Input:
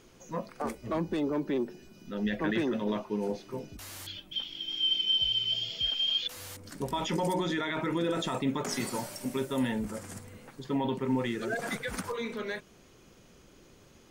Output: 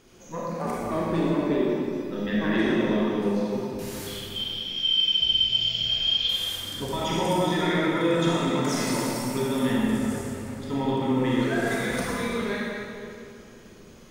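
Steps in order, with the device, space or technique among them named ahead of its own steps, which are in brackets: stairwell (reverberation RT60 2.5 s, pre-delay 28 ms, DRR -6 dB)

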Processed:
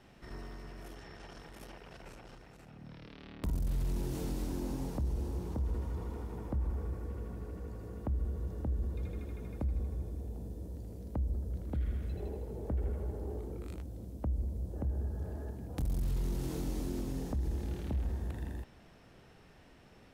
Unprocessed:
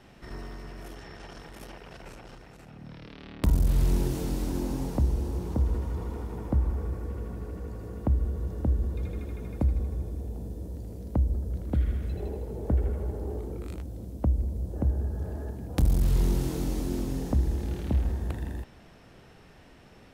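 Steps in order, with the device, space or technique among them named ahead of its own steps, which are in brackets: soft clipper into limiter (saturation -16.5 dBFS, distortion -21 dB; peak limiter -22 dBFS, peak gain reduction 4 dB); trim -5.5 dB

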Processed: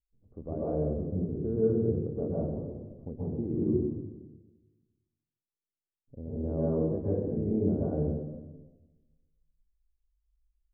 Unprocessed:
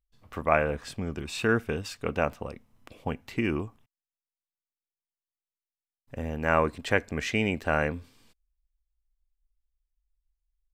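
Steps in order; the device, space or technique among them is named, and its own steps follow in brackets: next room (low-pass 470 Hz 24 dB/octave; reverberation RT60 1.2 s, pre-delay 115 ms, DRR -8.5 dB); trim -7 dB

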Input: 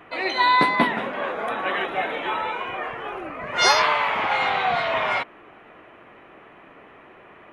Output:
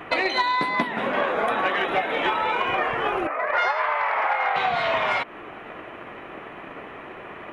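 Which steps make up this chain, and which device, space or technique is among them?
3.27–4.56 s: Chebyshev band-pass 560–1900 Hz, order 2; drum-bus smash (transient shaper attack +6 dB, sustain 0 dB; compression 20:1, threshold -27 dBFS, peak gain reduction 18 dB; saturation -18.5 dBFS, distortion -26 dB); trim +8.5 dB

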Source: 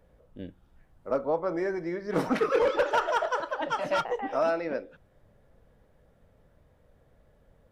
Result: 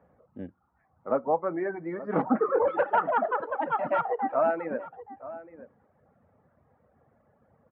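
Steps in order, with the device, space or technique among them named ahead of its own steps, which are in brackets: reverb removal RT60 1.1 s; 2.22–2.68 s: inverse Chebyshev low-pass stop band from 7.7 kHz, stop band 80 dB; bass cabinet (cabinet simulation 82–2100 Hz, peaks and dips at 230 Hz +6 dB, 780 Hz +8 dB, 1.2 kHz +7 dB); dynamic bell 1.2 kHz, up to -4 dB, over -40 dBFS, Q 2.6; echo from a far wall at 150 m, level -15 dB

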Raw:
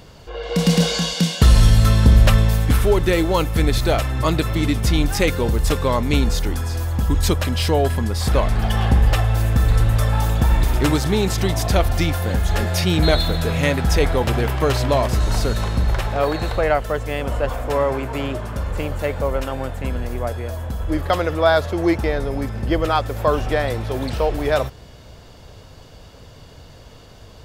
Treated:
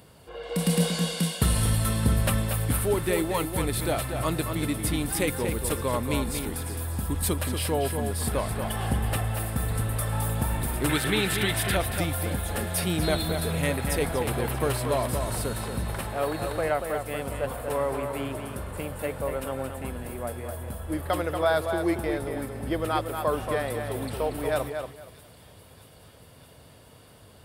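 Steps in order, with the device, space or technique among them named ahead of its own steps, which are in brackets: 10.89–11.76 s: high-order bell 2.3 kHz +11.5 dB; tape echo 234 ms, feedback 22%, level -5.5 dB, low-pass 4.4 kHz; budget condenser microphone (high-pass 79 Hz 12 dB/octave; resonant high shelf 7.7 kHz +7 dB, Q 3); feedback echo behind a high-pass 629 ms, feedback 74%, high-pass 3.3 kHz, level -16 dB; trim -8 dB

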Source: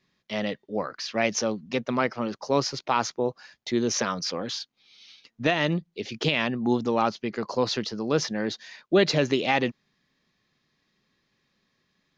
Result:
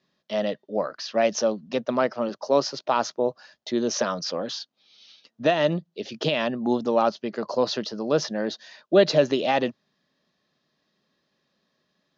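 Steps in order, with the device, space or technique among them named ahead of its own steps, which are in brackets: car door speaker (cabinet simulation 99–6600 Hz, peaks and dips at 110 Hz -9 dB, 610 Hz +9 dB, 2.2 kHz -8 dB); 2.29–2.86 s: high-pass 160 Hz

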